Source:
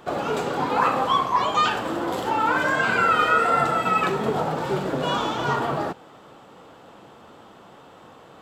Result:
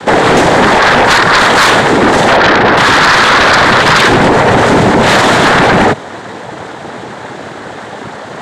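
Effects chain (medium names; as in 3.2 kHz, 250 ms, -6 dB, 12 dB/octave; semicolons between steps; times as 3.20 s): 2.36–2.77 s: low-pass 1.2 kHz 24 dB/octave; peak limiter -17 dBFS, peak gain reduction 9 dB; noise-vocoded speech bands 6; sine folder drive 12 dB, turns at -10.5 dBFS; trim +7.5 dB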